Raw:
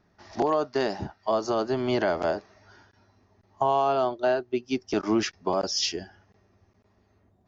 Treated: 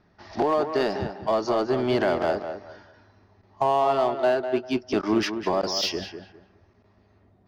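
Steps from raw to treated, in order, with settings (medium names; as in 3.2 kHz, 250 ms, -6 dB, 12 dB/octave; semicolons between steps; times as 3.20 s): low-pass 5.3 kHz 24 dB/octave; in parallel at -5 dB: overload inside the chain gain 30.5 dB; on the sum: tape echo 201 ms, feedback 26%, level -7.5 dB, low-pass 2.4 kHz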